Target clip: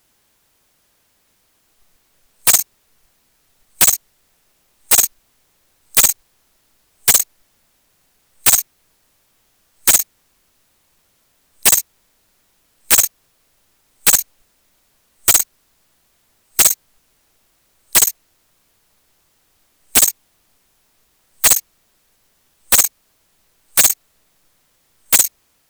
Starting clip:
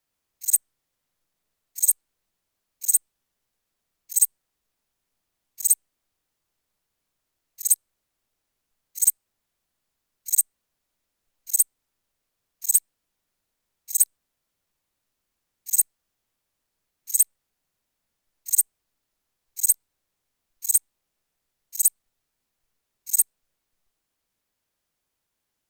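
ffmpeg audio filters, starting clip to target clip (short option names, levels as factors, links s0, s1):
-af "areverse,aeval=exprs='0.596*sin(PI/2*5.62*val(0)/0.596)':c=same"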